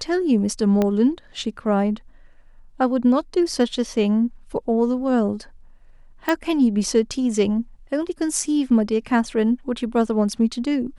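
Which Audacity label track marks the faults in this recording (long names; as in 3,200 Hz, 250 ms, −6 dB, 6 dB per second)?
0.820000	0.820000	click −9 dBFS
6.290000	6.290000	click −8 dBFS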